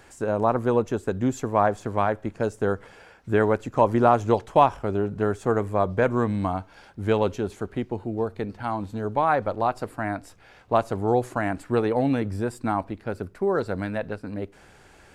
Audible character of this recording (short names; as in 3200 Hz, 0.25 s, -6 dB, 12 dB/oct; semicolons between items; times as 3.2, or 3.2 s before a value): noise floor -53 dBFS; spectral tilt -4.0 dB/oct